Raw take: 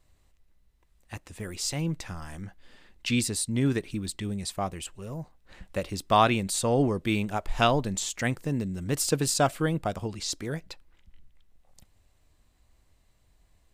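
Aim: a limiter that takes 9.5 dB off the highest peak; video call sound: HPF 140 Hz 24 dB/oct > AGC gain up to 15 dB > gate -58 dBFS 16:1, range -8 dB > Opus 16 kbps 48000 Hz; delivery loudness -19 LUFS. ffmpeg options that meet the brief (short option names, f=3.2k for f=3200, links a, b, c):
-af "alimiter=limit=-17dB:level=0:latency=1,highpass=f=140:w=0.5412,highpass=f=140:w=1.3066,dynaudnorm=m=15dB,agate=range=-8dB:threshold=-58dB:ratio=16,volume=12.5dB" -ar 48000 -c:a libopus -b:a 16k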